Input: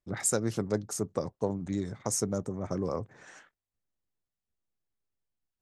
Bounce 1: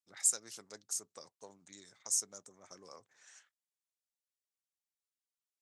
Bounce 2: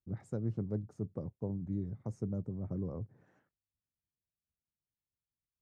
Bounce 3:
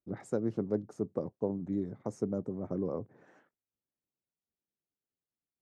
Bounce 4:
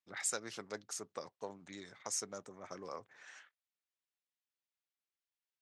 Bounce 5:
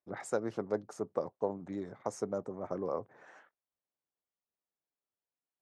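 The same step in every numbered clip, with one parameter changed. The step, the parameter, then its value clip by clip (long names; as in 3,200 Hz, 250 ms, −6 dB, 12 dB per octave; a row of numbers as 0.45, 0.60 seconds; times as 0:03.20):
resonant band-pass, frequency: 7,500, 100, 290, 2,900, 730 Hertz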